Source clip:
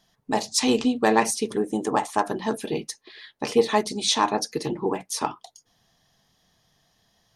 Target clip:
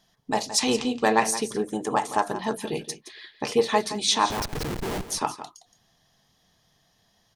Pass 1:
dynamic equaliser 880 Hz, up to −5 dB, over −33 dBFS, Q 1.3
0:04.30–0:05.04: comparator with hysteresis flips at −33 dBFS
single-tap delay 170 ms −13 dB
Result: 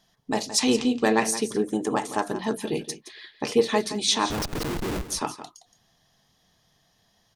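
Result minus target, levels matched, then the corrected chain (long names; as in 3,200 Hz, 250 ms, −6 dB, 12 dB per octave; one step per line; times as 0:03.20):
1,000 Hz band −4.0 dB
dynamic equaliser 290 Hz, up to −5 dB, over −33 dBFS, Q 1.3
0:04.30–0:05.04: comparator with hysteresis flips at −33 dBFS
single-tap delay 170 ms −13 dB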